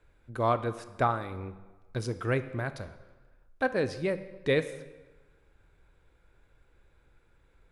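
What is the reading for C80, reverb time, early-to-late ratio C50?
15.0 dB, 1.2 s, 13.5 dB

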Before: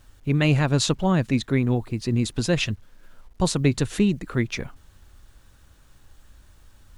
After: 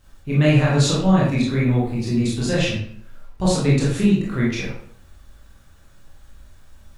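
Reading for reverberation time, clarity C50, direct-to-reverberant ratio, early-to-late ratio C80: 0.60 s, 1.5 dB, -7.0 dB, 6.0 dB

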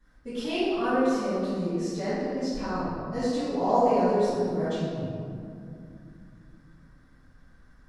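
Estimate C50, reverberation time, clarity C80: -4.5 dB, 2.5 s, -1.5 dB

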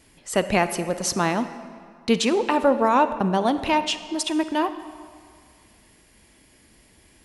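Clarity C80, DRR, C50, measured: 13.0 dB, 11.0 dB, 11.5 dB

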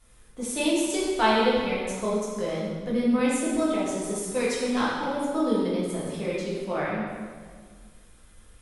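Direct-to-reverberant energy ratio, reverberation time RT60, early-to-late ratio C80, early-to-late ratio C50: -8.0 dB, 1.7 s, 1.5 dB, -1.0 dB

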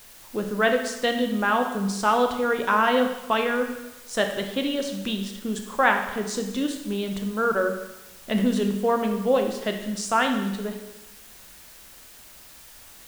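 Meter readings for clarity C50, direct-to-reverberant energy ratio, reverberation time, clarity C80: 7.0 dB, 4.0 dB, 1.0 s, 9.0 dB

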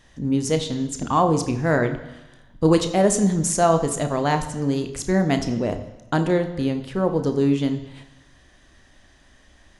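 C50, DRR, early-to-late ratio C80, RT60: 11.0 dB, 7.0 dB, 13.0 dB, 1.0 s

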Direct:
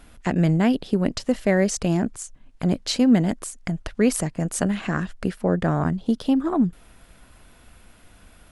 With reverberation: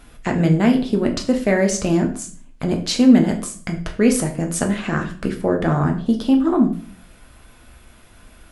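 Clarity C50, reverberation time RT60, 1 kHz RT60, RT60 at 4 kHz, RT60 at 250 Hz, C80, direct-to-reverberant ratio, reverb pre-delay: 10.5 dB, 0.45 s, 0.45 s, 0.40 s, 0.60 s, 14.5 dB, 2.5 dB, 5 ms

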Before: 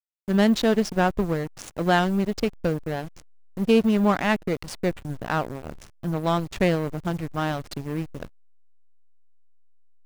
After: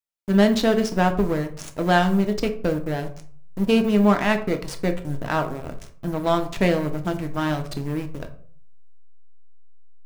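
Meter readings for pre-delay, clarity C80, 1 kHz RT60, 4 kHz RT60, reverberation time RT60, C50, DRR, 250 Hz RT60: 3 ms, 16.5 dB, 0.45 s, 0.30 s, 0.50 s, 12.5 dB, 5.5 dB, 0.60 s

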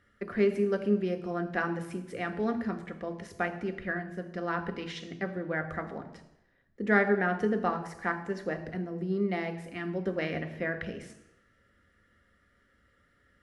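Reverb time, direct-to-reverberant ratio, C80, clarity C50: 0.85 s, 5.5 dB, 13.5 dB, 11.5 dB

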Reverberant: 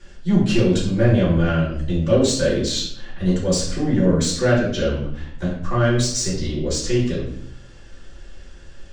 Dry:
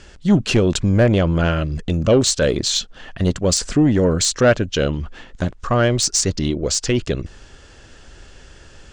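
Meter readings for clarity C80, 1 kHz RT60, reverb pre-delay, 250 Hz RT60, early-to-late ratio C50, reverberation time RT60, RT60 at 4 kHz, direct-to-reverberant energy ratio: 7.0 dB, 0.60 s, 3 ms, 0.95 s, 3.5 dB, 0.65 s, 0.50 s, -9.5 dB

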